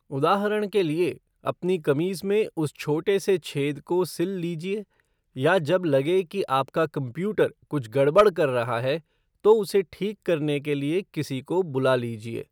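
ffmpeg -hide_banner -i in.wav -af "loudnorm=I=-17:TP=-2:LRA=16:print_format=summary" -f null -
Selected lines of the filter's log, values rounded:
Input Integrated:    -25.1 LUFS
Input True Peak:      -7.8 dBTP
Input LRA:             3.3 LU
Input Threshold:     -35.2 LUFS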